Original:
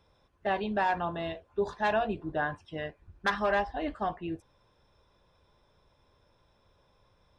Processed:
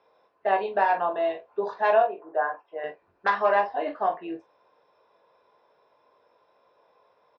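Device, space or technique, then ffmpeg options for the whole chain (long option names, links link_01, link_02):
phone earpiece: -filter_complex "[0:a]asettb=1/sr,asplit=3[link_01][link_02][link_03];[link_01]atrim=end=2.024[link_04];[link_02]atrim=start=2.02:end=2.84,asetpts=PTS-STARTPTS,afade=type=in:duration=0.004:curve=qsin,afade=type=out:start_time=0.816:duration=0.004:curve=qsin,acrossover=split=370 2000:gain=0.1 1 0.0794[link_05][link_06][link_07];[link_05][link_06][link_07]amix=inputs=3:normalize=0[link_08];[link_03]atrim=start=2.836[link_09];[link_04][link_08]acrossfade=duration=0.004:curve1=hsin:curve2=qsin[link_10];[link_10][link_09]acrossfade=duration=0.004:curve1=qsin:curve2=hsin,highpass=380,equalizer=frequency=460:width_type=q:width=4:gain=7,equalizer=frequency=680:width_type=q:width=4:gain=6,equalizer=frequency=1000:width_type=q:width=4:gain=5,equalizer=frequency=3400:width_type=q:width=4:gain=-8,lowpass=frequency=4500:width=0.5412,lowpass=frequency=4500:width=1.3066,aecho=1:1:21|45:0.473|0.335,volume=1.5dB"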